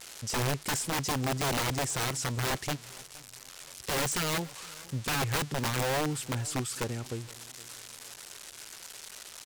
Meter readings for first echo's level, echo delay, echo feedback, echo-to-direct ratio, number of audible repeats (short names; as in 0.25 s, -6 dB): -22.0 dB, 0.469 s, 41%, -21.0 dB, 2